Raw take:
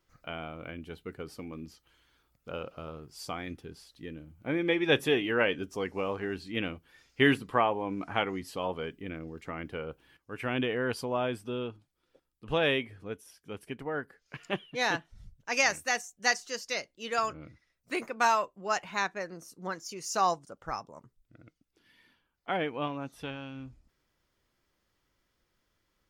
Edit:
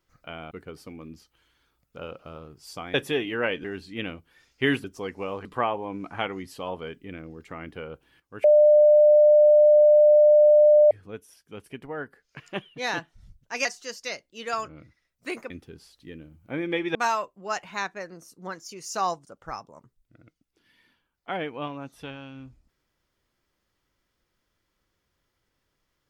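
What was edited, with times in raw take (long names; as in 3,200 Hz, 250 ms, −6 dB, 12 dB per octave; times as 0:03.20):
0:00.51–0:01.03: remove
0:03.46–0:04.91: move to 0:18.15
0:05.61–0:06.22: move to 0:07.42
0:10.41–0:12.88: beep over 599 Hz −12 dBFS
0:15.62–0:16.30: remove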